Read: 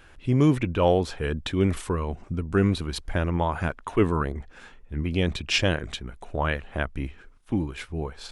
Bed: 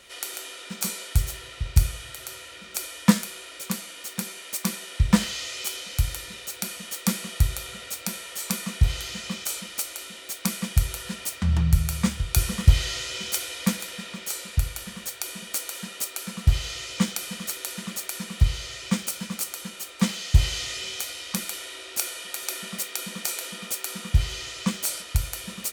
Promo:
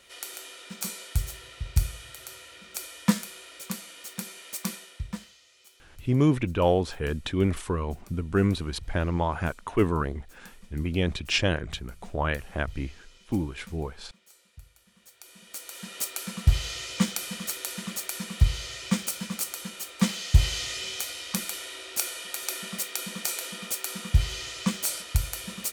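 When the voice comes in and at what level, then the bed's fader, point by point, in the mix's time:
5.80 s, -1.5 dB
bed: 4.72 s -5 dB
5.4 s -25.5 dB
14.84 s -25.5 dB
16 s -1 dB

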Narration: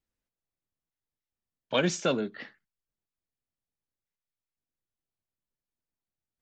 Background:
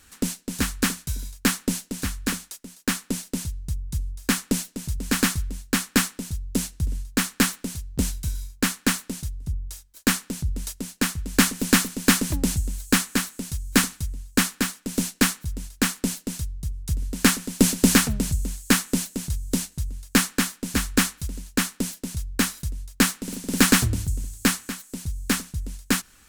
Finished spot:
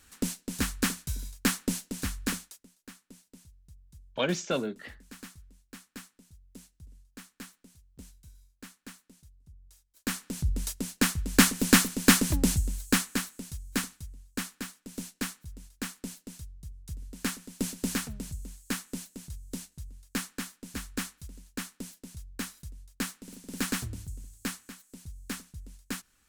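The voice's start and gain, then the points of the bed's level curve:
2.45 s, -2.5 dB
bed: 2.38 s -5 dB
2.91 s -25 dB
9.55 s -25 dB
10.47 s -1.5 dB
12.49 s -1.5 dB
14.1 s -14 dB

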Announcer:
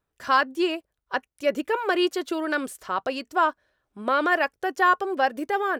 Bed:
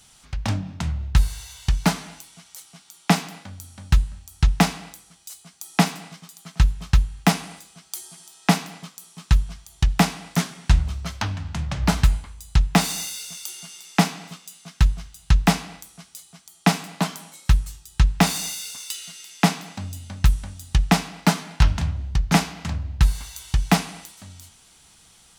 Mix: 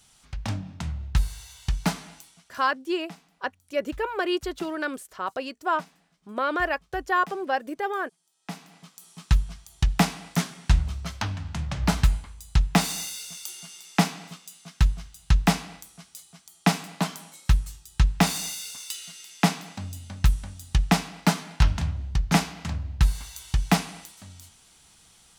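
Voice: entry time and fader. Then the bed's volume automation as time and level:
2.30 s, -3.5 dB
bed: 2.28 s -5.5 dB
2.87 s -26.5 dB
8.22 s -26.5 dB
9.1 s -3 dB

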